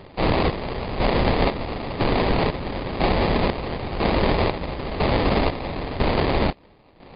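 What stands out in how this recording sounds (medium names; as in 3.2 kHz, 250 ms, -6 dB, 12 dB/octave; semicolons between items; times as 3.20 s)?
a buzz of ramps at a fixed pitch in blocks of 16 samples; chopped level 1 Hz, depth 65%, duty 50%; aliases and images of a low sample rate 1.5 kHz, jitter 20%; MP3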